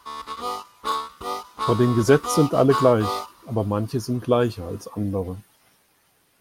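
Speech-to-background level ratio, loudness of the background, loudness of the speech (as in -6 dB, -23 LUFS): 7.0 dB, -29.0 LUFS, -22.0 LUFS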